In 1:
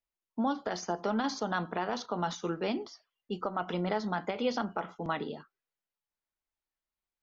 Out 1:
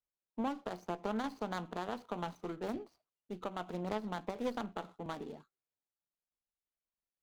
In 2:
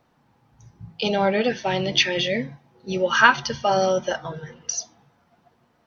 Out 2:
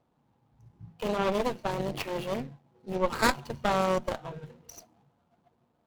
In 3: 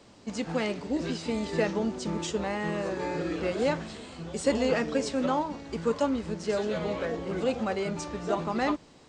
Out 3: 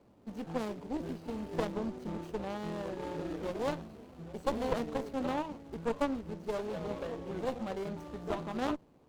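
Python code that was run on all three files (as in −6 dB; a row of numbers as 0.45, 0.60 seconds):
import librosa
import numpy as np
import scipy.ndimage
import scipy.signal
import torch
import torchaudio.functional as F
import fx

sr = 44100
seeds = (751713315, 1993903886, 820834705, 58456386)

y = scipy.signal.medfilt(x, 25)
y = fx.cheby_harmonics(y, sr, harmonics=(4,), levels_db=(-7,), full_scale_db=-7.0)
y = y * 10.0 ** (-6.5 / 20.0)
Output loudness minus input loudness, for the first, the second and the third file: −6.5, −8.0, −7.5 LU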